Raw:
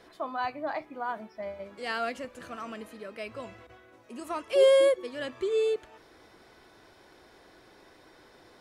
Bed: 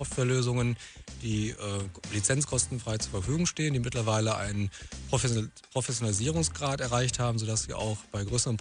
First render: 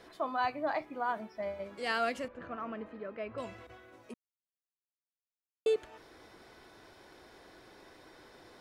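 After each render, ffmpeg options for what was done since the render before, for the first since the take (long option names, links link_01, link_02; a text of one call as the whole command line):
ffmpeg -i in.wav -filter_complex "[0:a]asettb=1/sr,asplit=3[link_01][link_02][link_03];[link_01]atrim=end=2.284[link_04];[link_02]atrim=start=2.28:end=3.38,asetpts=PTS-STARTPTS,afade=type=in:duration=0.004:curve=qsin,afade=type=out:start_time=1.096:duration=0.004:curve=qsin,lowpass=1700[link_05];[link_03]atrim=start=3.376[link_06];[link_04][link_05]acrossfade=duration=0.004:curve1=hsin:curve2=qsin[link_07];[link_07][link_06]acrossfade=duration=0.004:curve1=qsin:curve2=hsin,asplit=3[link_08][link_09][link_10];[link_08]atrim=end=4.14,asetpts=PTS-STARTPTS,afade=type=out:start_time=4.136:duration=0.004:curve=hsin[link_11];[link_09]atrim=start=4.14:end=5.66,asetpts=PTS-STARTPTS,volume=0[link_12];[link_10]atrim=start=5.66,asetpts=PTS-STARTPTS,afade=type=in:duration=0.004:curve=hsin[link_13];[link_11][link_12][link_13]concat=n=3:v=0:a=1" out.wav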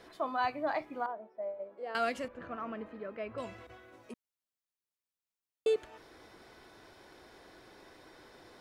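ffmpeg -i in.wav -filter_complex "[0:a]asettb=1/sr,asplit=3[link_01][link_02][link_03];[link_01]atrim=end=1.064[link_04];[link_02]atrim=start=1.06:end=1.95,asetpts=PTS-STARTPTS,afade=type=in:duration=0.004:curve=qsin,afade=type=out:start_time=0.886:duration=0.004:curve=qsin,bandpass=frequency=560:width_type=q:width=2.1[link_05];[link_03]atrim=start=1.946[link_06];[link_04][link_05]acrossfade=duration=0.004:curve1=hsin:curve2=qsin[link_07];[link_07][link_06]acrossfade=duration=0.004:curve1=qsin:curve2=hsin" out.wav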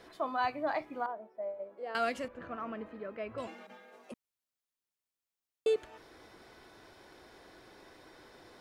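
ffmpeg -i in.wav -filter_complex "[0:a]asettb=1/sr,asplit=3[link_01][link_02][link_03];[link_01]atrim=end=3.474[link_04];[link_02]atrim=start=3.47:end=4.12,asetpts=PTS-STARTPTS,afade=type=in:duration=0.004:curve=qsin,afade=type=out:start_time=0.646:duration=0.004:curve=qsin,afreqshift=130[link_05];[link_03]atrim=start=4.116[link_06];[link_04][link_05]acrossfade=duration=0.004:curve1=hsin:curve2=qsin[link_07];[link_07][link_06]acrossfade=duration=0.004:curve1=qsin:curve2=hsin" out.wav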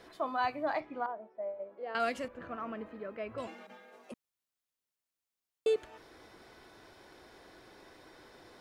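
ffmpeg -i in.wav -filter_complex "[0:a]asettb=1/sr,asplit=3[link_01][link_02][link_03];[link_01]atrim=end=0.804[link_04];[link_02]atrim=start=0.8:end=2,asetpts=PTS-STARTPTS,afade=type=in:duration=0.004:curve=qsin,afade=type=out:start_time=1.196:duration=0.004:curve=qsin,lowpass=4100[link_05];[link_03]atrim=start=1.996[link_06];[link_04][link_05]acrossfade=duration=0.004:curve1=hsin:curve2=qsin[link_07];[link_07][link_06]acrossfade=duration=0.004:curve1=qsin:curve2=hsin" out.wav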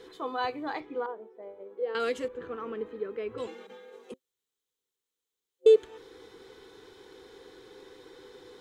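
ffmpeg -i in.wav -af "superequalizer=6b=1.58:7b=3.55:8b=0.355:13b=2:15b=1.58" out.wav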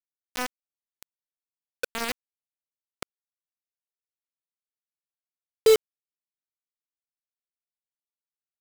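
ffmpeg -i in.wav -af "acrusher=bits=3:mix=0:aa=0.000001" out.wav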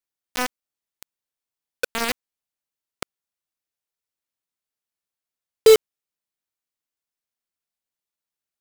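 ffmpeg -i in.wav -af "volume=5.5dB" out.wav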